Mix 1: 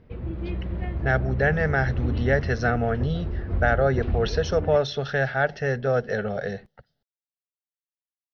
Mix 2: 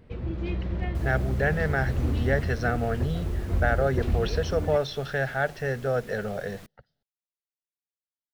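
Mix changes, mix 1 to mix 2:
speech -3.5 dB; first sound: remove air absorption 220 m; second sound: unmuted

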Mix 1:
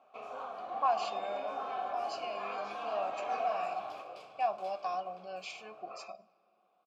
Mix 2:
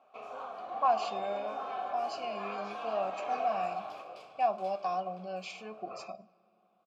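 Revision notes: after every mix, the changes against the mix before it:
speech: remove HPF 710 Hz 6 dB/oct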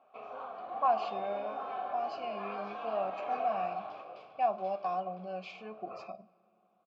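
master: add air absorption 210 m

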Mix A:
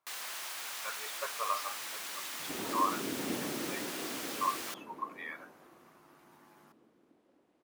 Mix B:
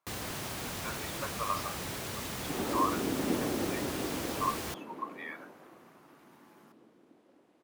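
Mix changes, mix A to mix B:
first sound: remove HPF 1100 Hz 12 dB/oct; second sound +5.5 dB; master: add HPF 74 Hz

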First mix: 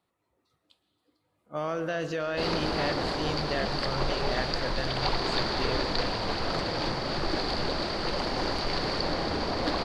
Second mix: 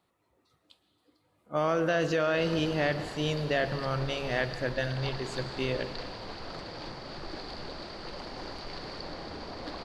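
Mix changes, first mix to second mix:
speech +4.0 dB; background -11.0 dB

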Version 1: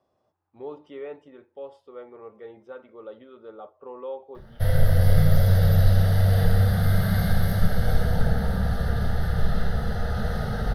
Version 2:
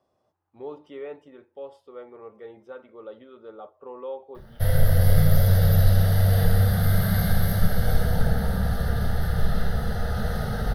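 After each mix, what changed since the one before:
master: add high shelf 10000 Hz +10.5 dB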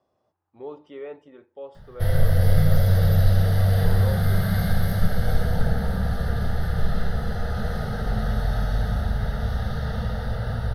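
background: entry -2.60 s; master: add high shelf 10000 Hz -10.5 dB

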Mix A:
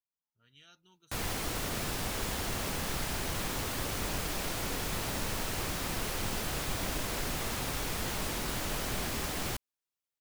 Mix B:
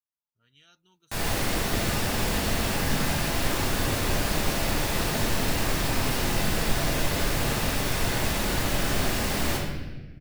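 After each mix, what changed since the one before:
reverb: on, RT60 1.2 s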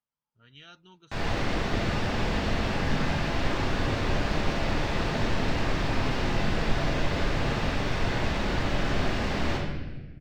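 speech +11.5 dB; master: add air absorption 170 m

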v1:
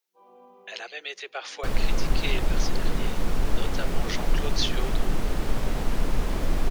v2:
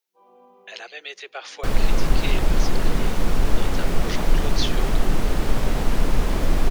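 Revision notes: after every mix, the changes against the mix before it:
second sound +5.0 dB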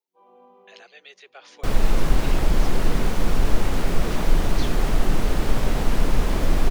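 speech -10.5 dB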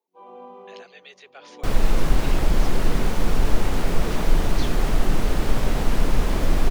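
first sound +10.5 dB

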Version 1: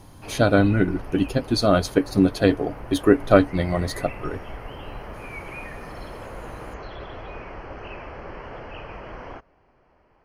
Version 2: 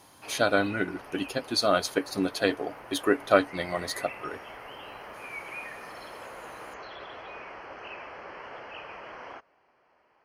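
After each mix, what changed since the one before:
master: add HPF 890 Hz 6 dB/oct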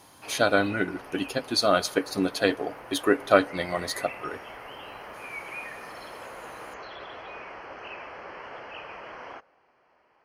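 reverb: on, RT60 1.2 s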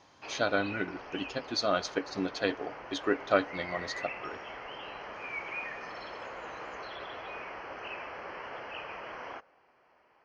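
speech -6.0 dB; master: add Chebyshev low-pass 6200 Hz, order 4

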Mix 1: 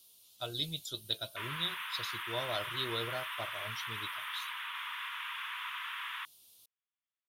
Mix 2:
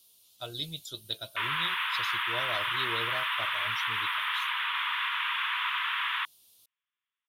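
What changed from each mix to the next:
background +10.0 dB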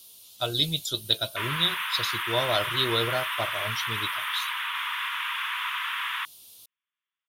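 speech +11.0 dB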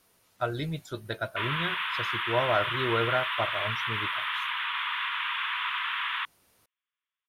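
speech: add resonant high shelf 2500 Hz -11 dB, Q 3; master: add high shelf 9600 Hz -11 dB

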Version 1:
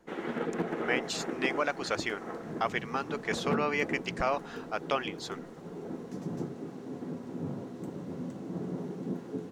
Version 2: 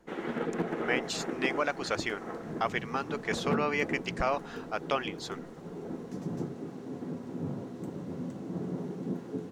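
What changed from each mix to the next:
master: add low shelf 93 Hz +5 dB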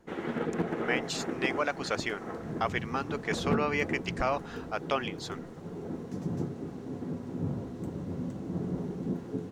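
background: remove Bessel high-pass 160 Hz, order 8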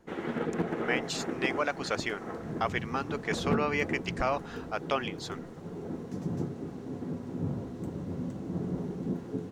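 none

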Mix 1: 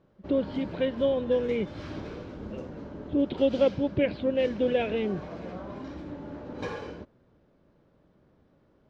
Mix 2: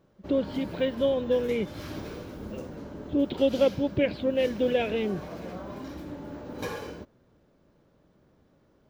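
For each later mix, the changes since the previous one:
master: remove air absorption 130 m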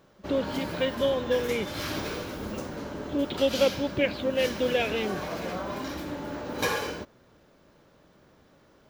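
background +6.5 dB; master: add tilt shelf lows -5 dB, about 640 Hz

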